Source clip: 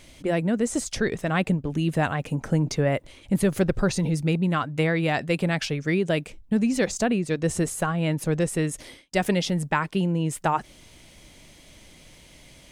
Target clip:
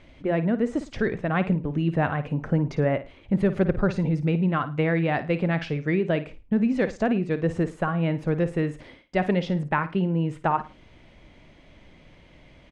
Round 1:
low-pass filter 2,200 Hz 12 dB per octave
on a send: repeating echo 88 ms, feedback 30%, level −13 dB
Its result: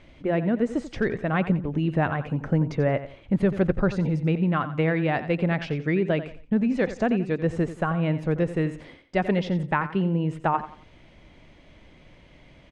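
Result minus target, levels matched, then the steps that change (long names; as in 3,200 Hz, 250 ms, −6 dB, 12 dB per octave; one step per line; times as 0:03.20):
echo 34 ms late
change: repeating echo 54 ms, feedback 30%, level −13 dB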